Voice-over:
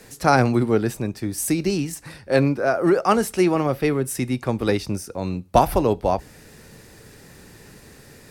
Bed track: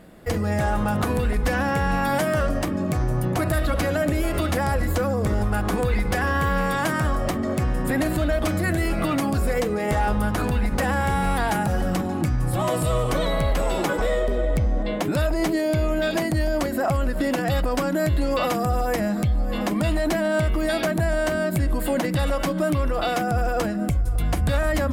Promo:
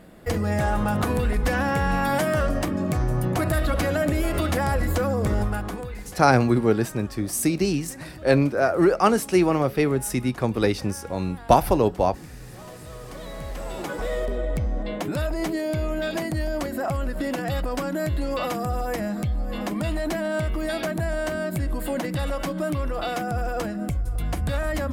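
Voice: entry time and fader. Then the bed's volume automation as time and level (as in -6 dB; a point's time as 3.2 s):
5.95 s, -0.5 dB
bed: 5.41 s -0.5 dB
6.18 s -19.5 dB
12.82 s -19.5 dB
14.2 s -4 dB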